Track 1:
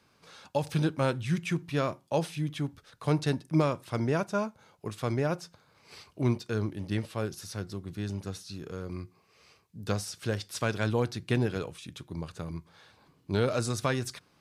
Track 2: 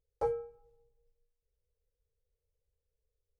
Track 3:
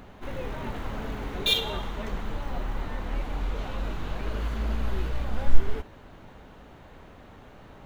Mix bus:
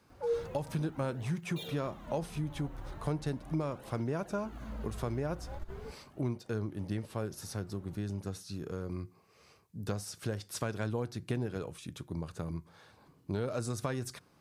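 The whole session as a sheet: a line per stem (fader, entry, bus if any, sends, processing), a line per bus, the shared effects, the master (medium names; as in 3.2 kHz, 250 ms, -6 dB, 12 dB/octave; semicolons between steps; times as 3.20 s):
+1.5 dB, 0.00 s, bus A, no send, none
+0.5 dB, 0.00 s, no bus, no send, formants replaced by sine waves
-6.5 dB, 0.10 s, bus A, no send, saturation -8.5 dBFS, distortion -12 dB; cancelling through-zero flanger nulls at 0.38 Hz, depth 5 ms
bus A: 0.0 dB, peaking EQ 3.3 kHz -6.5 dB 2.1 oct; compression 3:1, threshold -33 dBFS, peak gain reduction 11 dB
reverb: none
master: none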